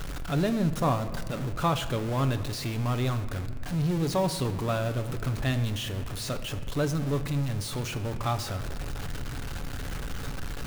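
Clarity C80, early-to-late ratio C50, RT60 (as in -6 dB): 13.0 dB, 12.0 dB, 2.1 s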